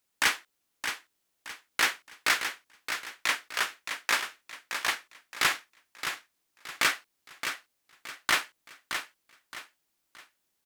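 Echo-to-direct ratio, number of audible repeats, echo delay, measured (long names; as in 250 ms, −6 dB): −7.5 dB, 3, 620 ms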